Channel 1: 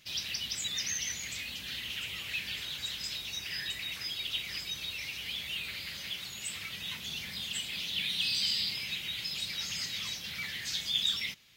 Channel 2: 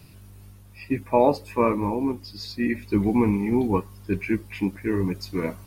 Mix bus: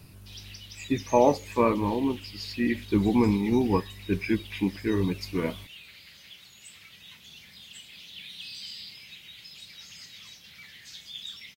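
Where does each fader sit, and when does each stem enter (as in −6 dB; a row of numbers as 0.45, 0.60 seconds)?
−10.0, −1.5 decibels; 0.20, 0.00 seconds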